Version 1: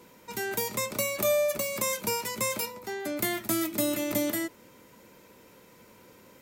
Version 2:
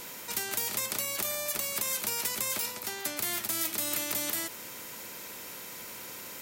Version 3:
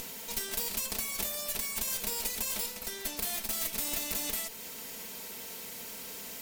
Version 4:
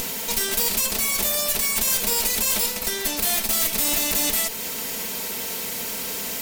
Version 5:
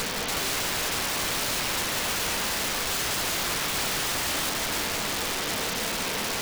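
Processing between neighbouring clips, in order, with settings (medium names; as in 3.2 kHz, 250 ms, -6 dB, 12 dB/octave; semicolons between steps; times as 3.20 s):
tilt EQ +2.5 dB/octave; peak limiter -17.5 dBFS, peak gain reduction 11.5 dB; spectrum-flattening compressor 2:1; trim +3.5 dB
comb filter that takes the minimum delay 4.5 ms; peaking EQ 1.4 kHz -6 dB 0.89 oct; upward compressor, threshold -37 dBFS
in parallel at 0 dB: peak limiter -25 dBFS, peak gain reduction 10 dB; on the sum: hard clipper -22.5 dBFS, distortion -18 dB; trim +7.5 dB
one-bit delta coder 32 kbps, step -36 dBFS; echo whose repeats swap between lows and highs 176 ms, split 2.1 kHz, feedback 80%, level -6 dB; integer overflow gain 28 dB; trim +5 dB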